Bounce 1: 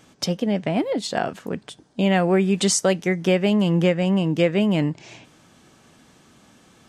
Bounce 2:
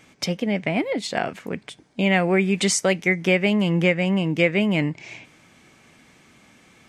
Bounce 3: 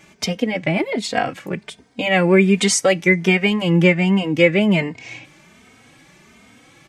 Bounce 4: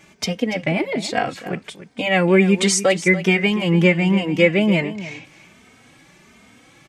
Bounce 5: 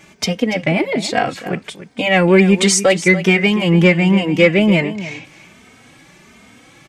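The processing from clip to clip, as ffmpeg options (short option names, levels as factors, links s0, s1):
-af "equalizer=f=2200:w=3.2:g=11.5,volume=0.841"
-filter_complex "[0:a]asplit=2[s0][s1];[s1]adelay=3,afreqshift=1.3[s2];[s0][s2]amix=inputs=2:normalize=1,volume=2.24"
-af "aecho=1:1:287:0.2,volume=0.891"
-af "asoftclip=type=tanh:threshold=0.596,volume=1.68"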